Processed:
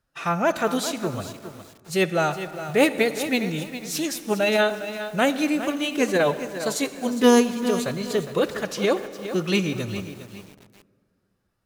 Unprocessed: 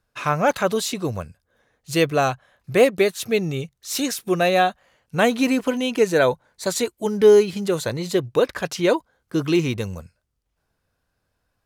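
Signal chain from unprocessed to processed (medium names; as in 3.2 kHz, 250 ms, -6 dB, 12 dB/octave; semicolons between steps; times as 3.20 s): hum notches 60/120 Hz; formant-preserving pitch shift +2.5 st; on a send at -13 dB: reverberation RT60 2.3 s, pre-delay 33 ms; on the sum: bit-crushed delay 409 ms, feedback 35%, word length 6-bit, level -11 dB; trim -2.5 dB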